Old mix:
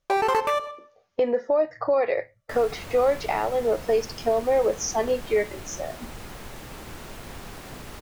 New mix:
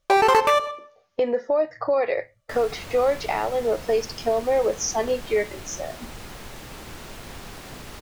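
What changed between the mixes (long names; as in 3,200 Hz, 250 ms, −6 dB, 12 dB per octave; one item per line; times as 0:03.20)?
first sound +5.0 dB
master: add parametric band 4,400 Hz +3 dB 2 octaves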